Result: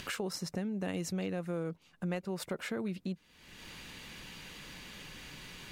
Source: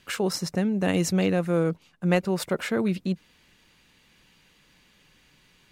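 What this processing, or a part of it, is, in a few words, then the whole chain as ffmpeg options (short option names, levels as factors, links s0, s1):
upward and downward compression: -af "acompressor=mode=upward:threshold=0.0126:ratio=2.5,acompressor=threshold=0.0112:ratio=3,volume=1.12"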